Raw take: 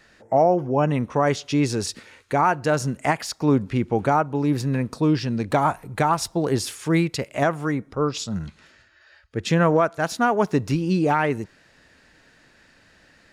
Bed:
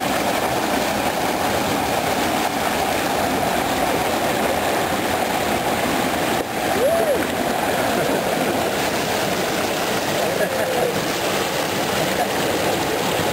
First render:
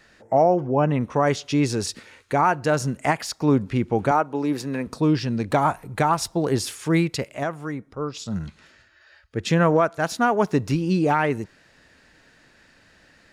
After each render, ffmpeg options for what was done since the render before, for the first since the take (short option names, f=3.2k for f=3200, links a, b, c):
-filter_complex "[0:a]asettb=1/sr,asplit=3[a][b][c];[a]atrim=end=0.604[d];[b]atrim=start=0.6:end=1.01,asetpts=PTS-STARTPTS,afade=t=in:d=0.004:c=qsin,afade=t=out:st=0.406:d=0.004:c=qsin,aemphasis=mode=reproduction:type=50fm[e];[c]atrim=start=1.006[f];[d][e]acrossfade=d=0.004:c1=hsin:c2=qsin[g];[g][f]acrossfade=d=0.004:c1=qsin:c2=hsin,asettb=1/sr,asplit=3[h][i][j];[h]atrim=end=4.114[k];[i]atrim=start=4.11:end=4.87,asetpts=PTS-STARTPTS,afade=t=in:d=0.004:c=qsin,afade=t=out:st=0.756:d=0.004:c=qsin,highpass=240[l];[j]atrim=start=4.866[m];[k][l]acrossfade=d=0.004:c1=hsin:c2=qsin[n];[n][m]acrossfade=d=0.004:c1=qsin:c2=hsin,asplit=3[o][p][q];[o]atrim=end=7.342[r];[p]atrim=start=7.338:end=8.262,asetpts=PTS-STARTPTS,volume=-6dB[s];[q]atrim=start=8.258[t];[r][s]acrossfade=d=0.004:c1=hsin:c2=hsin[u];[u][t]acrossfade=d=0.004:c1=hsin:c2=hsin"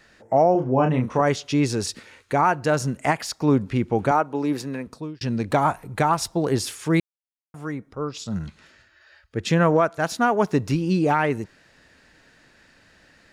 -filter_complex "[0:a]asettb=1/sr,asplit=3[a][b][c];[a]atrim=end=0.524[d];[b]atrim=start=0.52:end=1.21,asetpts=PTS-STARTPTS,afade=t=in:d=0.004:c=qsin,afade=t=out:st=0.686:d=0.004:c=qsin,asplit=2[e][f];[f]adelay=31,volume=-5dB[g];[e][g]amix=inputs=2:normalize=0,atrim=end_sample=30429[h];[c]atrim=start=1.206[i];[d][h]acrossfade=d=0.004:c1=hsin:c2=qsin[j];[j][i]acrossfade=d=0.004:c1=qsin:c2=hsin,asplit=4[k][l][m][n];[k]atrim=end=5.21,asetpts=PTS-STARTPTS,afade=t=out:st=4.56:d=0.65[o];[l]atrim=start=5.21:end=7,asetpts=PTS-STARTPTS,afade=t=in:d=0.004:c=hsin,afade=t=out:st=1.786:d=0.004:c=hsin[p];[m]atrim=start=7:end=7.54,asetpts=PTS-STARTPTS,volume=0[q];[n]atrim=start=7.54,asetpts=PTS-STARTPTS,afade=t=in:d=0.004:c=hsin[r];[o][p][q][r]concat=n=4:v=0:a=1"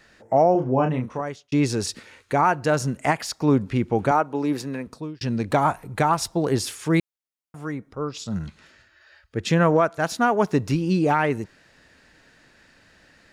-filter_complex "[0:a]asplit=2[a][b];[a]atrim=end=1.52,asetpts=PTS-STARTPTS,afade=t=out:st=0.69:d=0.83[c];[b]atrim=start=1.52,asetpts=PTS-STARTPTS,afade=t=in:d=0.004:c=hsin[d];[c][d]concat=n=2:v=0:a=1"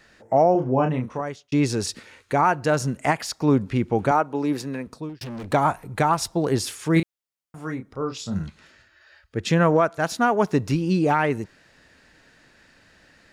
-filter_complex "[0:a]asettb=1/sr,asplit=3[a][b][c];[a]atrim=end=5.094[d];[b]atrim=start=5.09:end=5.51,asetpts=PTS-STARTPTS,afade=t=in:d=0.004:c=qsin,afade=t=out:st=0.416:d=0.004:c=qsin,volume=32dB,asoftclip=hard,volume=-32dB[e];[c]atrim=start=5.506[f];[d][e]acrossfade=d=0.004:c1=hsin:c2=qsin[g];[g][f]acrossfade=d=0.004:c1=qsin:c2=hsin,asettb=1/sr,asplit=3[h][i][j];[h]atrim=end=6.934[k];[i]atrim=start=6.93:end=8.43,asetpts=PTS-STARTPTS,afade=t=in:d=0.004:c=qsin,afade=t=out:st=1.496:d=0.004:c=qsin,asplit=2[l][m];[m]adelay=31,volume=-7dB[n];[l][n]amix=inputs=2:normalize=0,atrim=end_sample=66150[o];[j]atrim=start=8.426[p];[k][o]acrossfade=d=0.004:c1=hsin:c2=qsin[q];[q][p]acrossfade=d=0.004:c1=qsin:c2=hsin"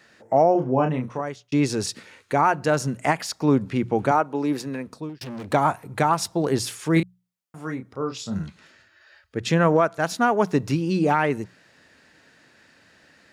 -af "highpass=97,bandreject=f=60:t=h:w=6,bandreject=f=120:t=h:w=6,bandreject=f=180:t=h:w=6"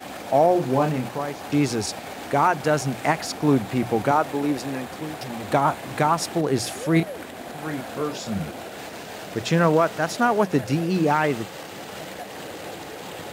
-filter_complex "[1:a]volume=-15.5dB[a];[0:a][a]amix=inputs=2:normalize=0"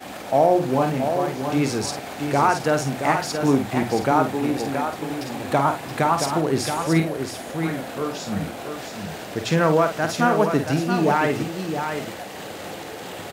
-filter_complex "[0:a]asplit=2[a][b];[b]adelay=50,volume=-8.5dB[c];[a][c]amix=inputs=2:normalize=0,asplit=2[d][e];[e]aecho=0:1:675:0.447[f];[d][f]amix=inputs=2:normalize=0"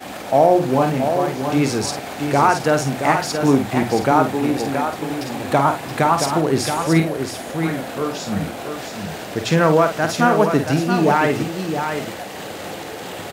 -af "volume=3.5dB"